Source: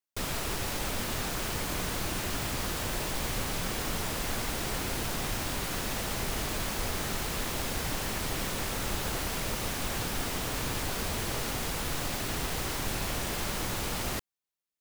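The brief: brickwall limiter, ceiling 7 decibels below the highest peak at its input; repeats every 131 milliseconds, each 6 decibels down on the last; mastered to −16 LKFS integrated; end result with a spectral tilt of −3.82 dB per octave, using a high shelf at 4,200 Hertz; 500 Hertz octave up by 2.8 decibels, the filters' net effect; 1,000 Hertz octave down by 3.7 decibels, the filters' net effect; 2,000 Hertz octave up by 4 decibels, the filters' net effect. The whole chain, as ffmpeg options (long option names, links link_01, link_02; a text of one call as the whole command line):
ffmpeg -i in.wav -af "equalizer=frequency=500:width_type=o:gain=5.5,equalizer=frequency=1000:width_type=o:gain=-9,equalizer=frequency=2000:width_type=o:gain=8.5,highshelf=frequency=4200:gain=-6,alimiter=level_in=0.5dB:limit=-24dB:level=0:latency=1,volume=-0.5dB,aecho=1:1:131|262|393|524|655|786:0.501|0.251|0.125|0.0626|0.0313|0.0157,volume=17dB" out.wav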